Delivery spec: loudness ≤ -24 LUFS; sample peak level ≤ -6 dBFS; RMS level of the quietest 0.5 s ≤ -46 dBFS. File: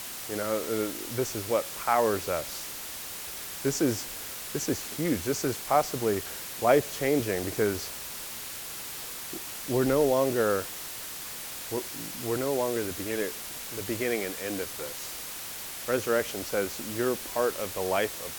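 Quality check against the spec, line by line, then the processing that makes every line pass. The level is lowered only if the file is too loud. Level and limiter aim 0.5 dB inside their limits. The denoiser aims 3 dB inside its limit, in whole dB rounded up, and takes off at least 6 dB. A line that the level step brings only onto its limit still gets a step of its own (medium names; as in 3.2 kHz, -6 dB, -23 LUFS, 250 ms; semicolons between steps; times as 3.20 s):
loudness -29.5 LUFS: pass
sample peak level -8.0 dBFS: pass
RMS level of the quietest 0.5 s -39 dBFS: fail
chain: noise reduction 10 dB, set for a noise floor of -39 dBFS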